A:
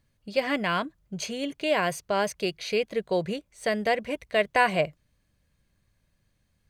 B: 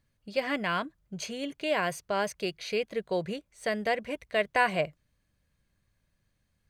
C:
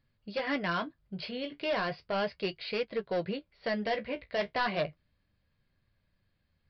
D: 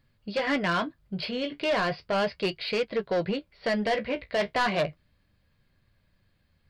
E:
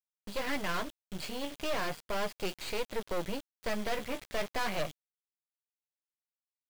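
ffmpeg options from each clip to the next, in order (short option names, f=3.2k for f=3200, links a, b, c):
-af "equalizer=f=1.5k:w=1.5:g=2,volume=-4dB"
-af "aresample=11025,asoftclip=type=hard:threshold=-26dB,aresample=44100,flanger=delay=7.5:depth=8.9:regen=-42:speed=0.35:shape=triangular,volume=3.5dB"
-af "asoftclip=type=tanh:threshold=-26dB,volume=7dB"
-af "aeval=exprs='val(0)+0.00282*sin(2*PI*3300*n/s)':c=same,acrusher=bits=4:dc=4:mix=0:aa=0.000001,volume=-3dB"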